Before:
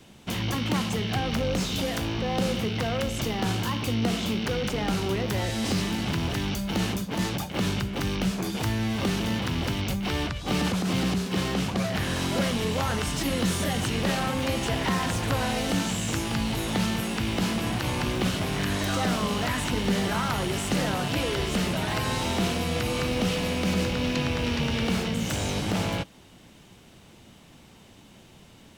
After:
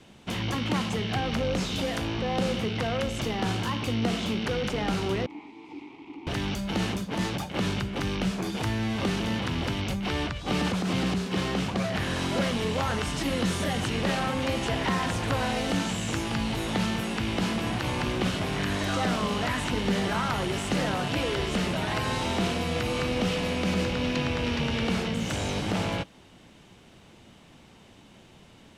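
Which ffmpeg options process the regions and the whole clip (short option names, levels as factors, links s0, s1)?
-filter_complex "[0:a]asettb=1/sr,asplit=3[s0][s1][s2];[s0]atrim=end=5.264[s3];[s1]atrim=start=5.26:end=6.27,asetpts=PTS-STARTPTS,afade=t=in:d=0.004:c=qsin,afade=t=out:st=1.006:d=0.004:c=qsin,aeval=exprs='abs(val(0))':c=same,asplit=3[s4][s5][s6];[s4]bandpass=f=300:t=q:w=8,volume=1[s7];[s5]bandpass=f=870:t=q:w=8,volume=0.501[s8];[s6]bandpass=f=2240:t=q:w=8,volume=0.355[s9];[s7][s8][s9]amix=inputs=3:normalize=0[s10];[s2]atrim=start=6.266[s11];[s3][s10]acrossfade=d=0.004:c1=hsin:c2=qsin[s12];[s12][s11]acrossfade=d=0.004:c1=qsin:c2=hsin,lowpass=11000,bass=f=250:g=-2,treble=f=4000:g=-4"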